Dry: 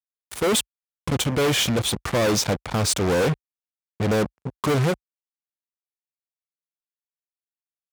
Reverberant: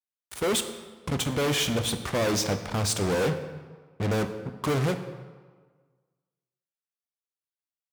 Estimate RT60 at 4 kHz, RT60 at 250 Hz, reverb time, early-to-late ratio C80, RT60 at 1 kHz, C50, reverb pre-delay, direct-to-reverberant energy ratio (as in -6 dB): 1.0 s, 1.4 s, 1.5 s, 11.5 dB, 1.5 s, 10.0 dB, 9 ms, 8.0 dB